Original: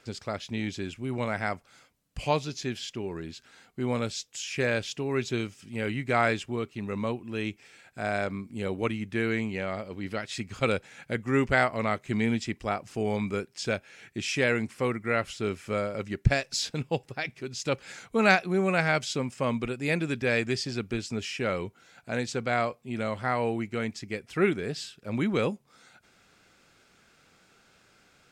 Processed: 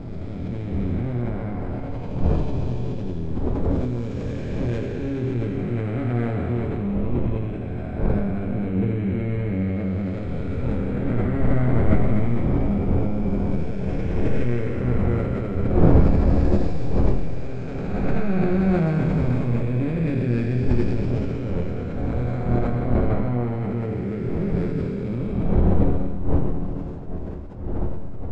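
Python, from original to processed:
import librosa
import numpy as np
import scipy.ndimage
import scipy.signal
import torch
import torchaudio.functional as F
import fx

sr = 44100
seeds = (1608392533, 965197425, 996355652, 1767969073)

p1 = fx.spec_blur(x, sr, span_ms=839.0)
p2 = fx.dmg_wind(p1, sr, seeds[0], corner_hz=510.0, level_db=-39.0)
p3 = fx.tilt_eq(p2, sr, slope=-4.5)
p4 = fx.hum_notches(p3, sr, base_hz=50, count=3)
p5 = p4 + fx.room_early_taps(p4, sr, ms=(11, 25), db=(-10.0, -5.0), dry=0)
p6 = fx.rev_schroeder(p5, sr, rt60_s=1.8, comb_ms=32, drr_db=5.5)
p7 = fx.sustainer(p6, sr, db_per_s=28.0)
y = p7 * librosa.db_to_amplitude(-2.5)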